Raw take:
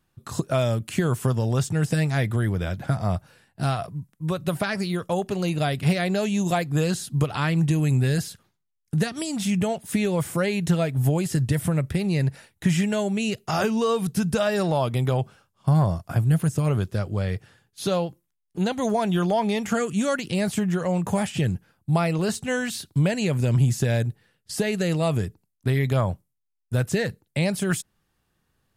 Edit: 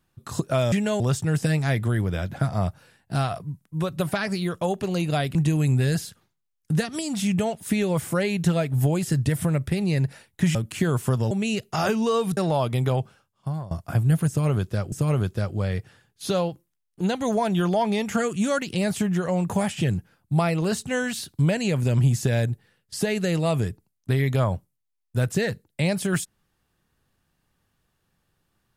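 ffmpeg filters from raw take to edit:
-filter_complex "[0:a]asplit=9[s0][s1][s2][s3][s4][s5][s6][s7][s8];[s0]atrim=end=0.722[s9];[s1]atrim=start=12.778:end=13.062[s10];[s2]atrim=start=1.478:end=5.832[s11];[s3]atrim=start=7.578:end=12.782[s12];[s4]atrim=start=0.718:end=1.482[s13];[s5]atrim=start=13.058:end=14.122[s14];[s6]atrim=start=14.578:end=15.92,asetpts=PTS-STARTPTS,afade=t=out:st=0.572:d=0.77:silence=0.1[s15];[s7]atrim=start=15.92:end=17.132,asetpts=PTS-STARTPTS,afade=t=in:d=0.004:c=hsin:silence=0.1[s16];[s8]atrim=start=16.488[s17];[s9][s10]acrossfade=d=0.004:c1=hsin:c2=hsin[s18];[s18][s11]acrossfade=d=0.004:c1=hsin:c2=hsin[s19];[s19][s12]acrossfade=d=0.004:c1=hsin:c2=hsin[s20];[s20][s13]acrossfade=d=0.004:c1=hsin:c2=hsin[s21];[s21][s14]acrossfade=d=0.004:c1=hsin:c2=hsin[s22];[s15][s16]concat=n=2:v=0:a=1[s23];[s22][s23]acrossfade=d=0.004:c1=hsin:c2=hsin[s24];[s24][s17]acrossfade=d=0.004:c1=hsin:c2=hsin"

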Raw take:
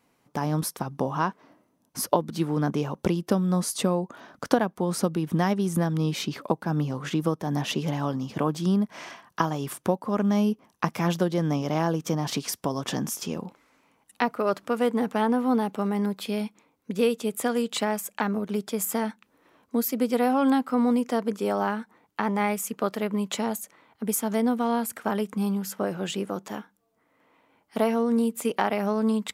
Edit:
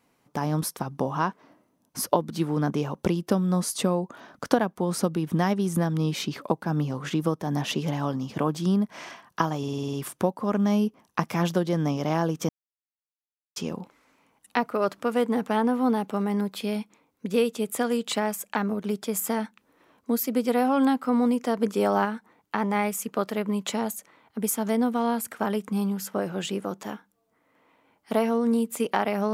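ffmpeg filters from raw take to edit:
-filter_complex "[0:a]asplit=12[s0][s1][s2][s3][s4][s5][s6][s7][s8][s9][s10][s11];[s0]atrim=end=9.632[s12];[s1]atrim=start=9.578:end=9.632[s13];[s2]atrim=start=9.578:end=9.632[s14];[s3]atrim=start=9.578:end=9.632[s15];[s4]atrim=start=9.578:end=9.632[s16];[s5]atrim=start=9.578:end=9.632[s17];[s6]atrim=start=9.578:end=9.632[s18];[s7]atrim=start=9.578:end=12.14,asetpts=PTS-STARTPTS,afade=t=out:st=2.558:d=0.004:c=hsin[s19];[s8]atrim=start=12.14:end=13.21,asetpts=PTS-STARTPTS,volume=0[s20];[s9]atrim=start=13.21:end=21.232,asetpts=PTS-STARTPTS,afade=t=in:d=0.004:c=hsin[s21];[s10]atrim=start=21.228:end=21.702,asetpts=PTS-STARTPTS,volume=1.41[s22];[s11]atrim=start=21.698[s23];[s12][s13]acrossfade=d=0.004:c1=hsin:c2=hsin[s24];[s24][s14]acrossfade=d=0.004:c1=hsin:c2=hsin[s25];[s25][s15]acrossfade=d=0.004:c1=hsin:c2=hsin[s26];[s26][s16]acrossfade=d=0.004:c1=hsin:c2=hsin[s27];[s27][s17]acrossfade=d=0.004:c1=hsin:c2=hsin[s28];[s28][s18]acrossfade=d=0.004:c1=hsin:c2=hsin[s29];[s19][s20][s21]concat=n=3:v=0:a=1[s30];[s29][s30]acrossfade=d=0.004:c1=hsin:c2=hsin[s31];[s31][s22]acrossfade=d=0.004:c1=hsin:c2=hsin[s32];[s32][s23]acrossfade=d=0.004:c1=hsin:c2=hsin"

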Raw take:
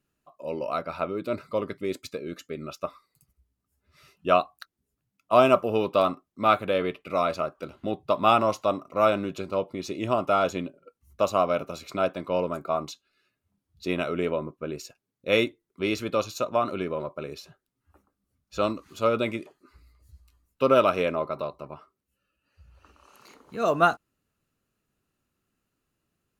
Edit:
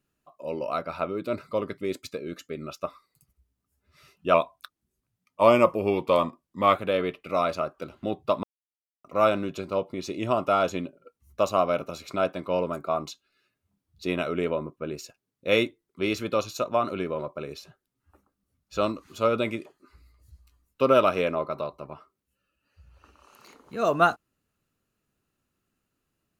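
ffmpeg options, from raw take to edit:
-filter_complex "[0:a]asplit=5[s0][s1][s2][s3][s4];[s0]atrim=end=4.344[s5];[s1]atrim=start=4.34:end=6.56,asetpts=PTS-STARTPTS,asetrate=40572,aresample=44100,atrim=end_sample=106415,asetpts=PTS-STARTPTS[s6];[s2]atrim=start=6.556:end=8.24,asetpts=PTS-STARTPTS,afade=t=out:st=1.68:d=0.004:c=hsin[s7];[s3]atrim=start=8.24:end=8.85,asetpts=PTS-STARTPTS,volume=0[s8];[s4]atrim=start=8.85,asetpts=PTS-STARTPTS,afade=t=in:d=0.004:c=hsin[s9];[s5][s6]acrossfade=d=0.004:c1=hsin:c2=hsin[s10];[s7][s8][s9]concat=n=3:v=0:a=1[s11];[s10][s11]acrossfade=d=0.004:c1=hsin:c2=hsin"

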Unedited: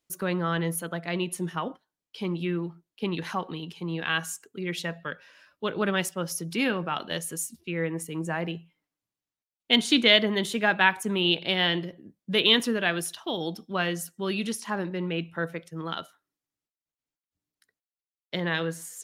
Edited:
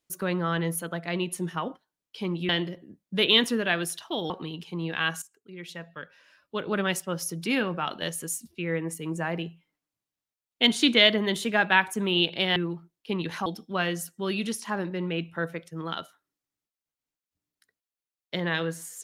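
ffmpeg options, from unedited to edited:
-filter_complex "[0:a]asplit=6[s0][s1][s2][s3][s4][s5];[s0]atrim=end=2.492[s6];[s1]atrim=start=11.648:end=13.462[s7];[s2]atrim=start=3.388:end=4.31,asetpts=PTS-STARTPTS,afade=t=out:st=0.918:d=0.004:c=hsin:silence=0.149624[s8];[s3]atrim=start=4.31:end=11.652,asetpts=PTS-STARTPTS,afade=t=in:d=1.77:silence=0.149624[s9];[s4]atrim=start=2.488:end=3.392[s10];[s5]atrim=start=13.458[s11];[s6][s7]acrossfade=d=0.004:c1=hsin:c2=hsin[s12];[s8][s9]concat=n=2:v=0:a=1[s13];[s12][s13]acrossfade=d=0.004:c1=hsin:c2=hsin[s14];[s14][s10]acrossfade=d=0.004:c1=hsin:c2=hsin[s15];[s15][s11]acrossfade=d=0.004:c1=hsin:c2=hsin"

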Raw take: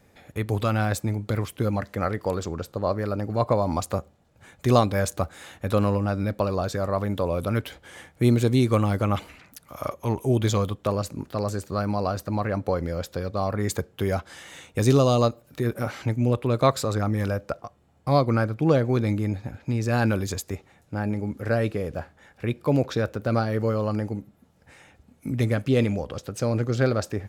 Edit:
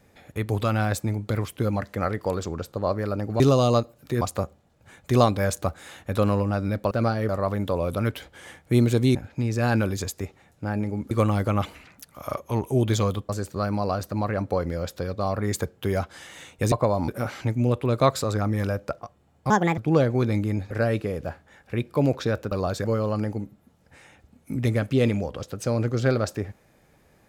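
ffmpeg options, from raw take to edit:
-filter_complex "[0:a]asplit=15[s0][s1][s2][s3][s4][s5][s6][s7][s8][s9][s10][s11][s12][s13][s14];[s0]atrim=end=3.402[s15];[s1]atrim=start=14.878:end=15.692[s16];[s2]atrim=start=3.758:end=6.462[s17];[s3]atrim=start=23.218:end=23.602[s18];[s4]atrim=start=6.788:end=8.652[s19];[s5]atrim=start=19.448:end=21.412[s20];[s6]atrim=start=8.648:end=10.832[s21];[s7]atrim=start=11.448:end=14.882[s22];[s8]atrim=start=3.398:end=3.762[s23];[s9]atrim=start=15.688:end=18.114[s24];[s10]atrim=start=18.11:end=18.52,asetpts=PTS-STARTPTS,asetrate=65709,aresample=44100[s25];[s11]atrim=start=18.516:end=19.452[s26];[s12]atrim=start=21.408:end=23.222[s27];[s13]atrim=start=6.458:end=6.792[s28];[s14]atrim=start=23.598[s29];[s15][s16]acrossfade=d=0.004:c1=hsin:c2=hsin[s30];[s30][s17]acrossfade=d=0.004:c1=hsin:c2=hsin[s31];[s31][s18]acrossfade=d=0.004:c1=hsin:c2=hsin[s32];[s32][s19]acrossfade=d=0.004:c1=hsin:c2=hsin[s33];[s33][s20]acrossfade=d=0.004:c1=hsin:c2=hsin[s34];[s34][s21]acrossfade=d=0.004:c1=hsin:c2=hsin[s35];[s35][s22]acrossfade=d=0.004:c1=hsin:c2=hsin[s36];[s36][s23]acrossfade=d=0.004:c1=hsin:c2=hsin[s37];[s37][s24]acrossfade=d=0.004:c1=hsin:c2=hsin[s38];[s38][s25]acrossfade=d=0.004:c1=hsin:c2=hsin[s39];[s39][s26]acrossfade=d=0.004:c1=hsin:c2=hsin[s40];[s40][s27]acrossfade=d=0.004:c1=hsin:c2=hsin[s41];[s41][s28]acrossfade=d=0.004:c1=hsin:c2=hsin[s42];[s42][s29]acrossfade=d=0.004:c1=hsin:c2=hsin"

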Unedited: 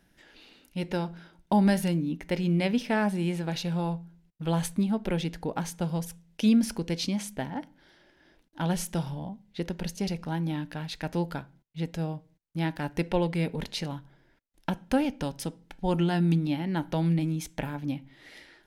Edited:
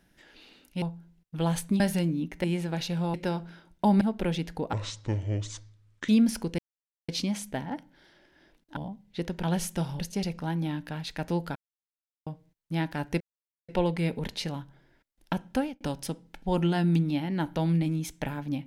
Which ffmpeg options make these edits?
-filter_complex "[0:a]asplit=16[s0][s1][s2][s3][s4][s5][s6][s7][s8][s9][s10][s11][s12][s13][s14][s15];[s0]atrim=end=0.822[s16];[s1]atrim=start=3.888:end=4.872[s17];[s2]atrim=start=1.688:end=2.332[s18];[s3]atrim=start=3.188:end=3.892[s19];[s4]atrim=start=0.818:end=1.692[s20];[s5]atrim=start=4.868:end=5.594[s21];[s6]atrim=start=5.59:end=6.43,asetpts=PTS-STARTPTS,asetrate=27342,aresample=44100,atrim=end_sample=59748,asetpts=PTS-STARTPTS[s22];[s7]atrim=start=6.426:end=6.93,asetpts=PTS-STARTPTS,afade=t=out:st=0.5:d=0.004:c=hsin,apad=pad_dur=0.5[s23];[s8]atrim=start=6.93:end=8.612,asetpts=PTS-STARTPTS,afade=t=in:d=0.004:c=hsin[s24];[s9]atrim=start=9.168:end=9.842[s25];[s10]atrim=start=8.608:end=9.172[s26];[s11]atrim=start=9.838:end=11.4,asetpts=PTS-STARTPTS,afade=t=out:st=1.558:d=0.004:c=hsin[s27];[s12]atrim=start=11.4:end=12.11,asetpts=PTS-STARTPTS,volume=0[s28];[s13]atrim=start=12.11:end=13.05,asetpts=PTS-STARTPTS,afade=t=in:d=0.004:c=hsin,afade=t=out:st=0.936:d=0.004:c=hsin,apad=pad_dur=0.48[s29];[s14]atrim=start=13.05:end=15.17,asetpts=PTS-STARTPTS,afade=t=in:d=0.004:c=hsin,afade=t=out:st=1.82:d=0.3[s30];[s15]atrim=start=15.17,asetpts=PTS-STARTPTS,afade=t=in:d=0.004:c=hsin[s31];[s16][s17]acrossfade=d=0.004:c1=hsin:c2=hsin[s32];[s32][s18]acrossfade=d=0.004:c1=hsin:c2=hsin[s33];[s33][s19]acrossfade=d=0.004:c1=hsin:c2=hsin[s34];[s34][s20]acrossfade=d=0.004:c1=hsin:c2=hsin[s35];[s35][s21]acrossfade=d=0.004:c1=hsin:c2=hsin[s36];[s36][s22]acrossfade=d=0.004:c1=hsin:c2=hsin[s37];[s23][s24]concat=n=2:v=0:a=1[s38];[s37][s38]acrossfade=d=0.004:c1=hsin:c2=hsin[s39];[s39][s25]acrossfade=d=0.004:c1=hsin:c2=hsin[s40];[s40][s26]acrossfade=d=0.004:c1=hsin:c2=hsin[s41];[s27][s28][s29][s30][s31]concat=n=5:v=0:a=1[s42];[s41][s42]acrossfade=d=0.004:c1=hsin:c2=hsin"

